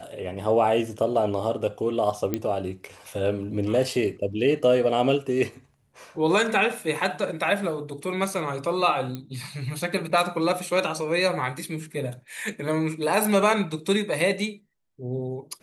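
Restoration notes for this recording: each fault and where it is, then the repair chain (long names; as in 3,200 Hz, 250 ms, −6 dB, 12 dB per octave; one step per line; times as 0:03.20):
0:02.34: click −12 dBFS
0:09.15: click −19 dBFS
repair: click removal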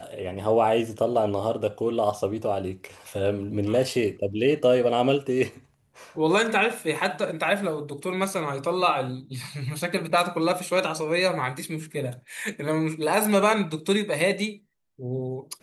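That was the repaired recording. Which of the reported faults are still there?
none of them is left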